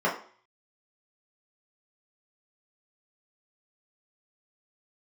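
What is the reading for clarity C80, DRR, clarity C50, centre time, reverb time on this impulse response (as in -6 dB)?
13.0 dB, -6.5 dB, 8.5 dB, 25 ms, 0.45 s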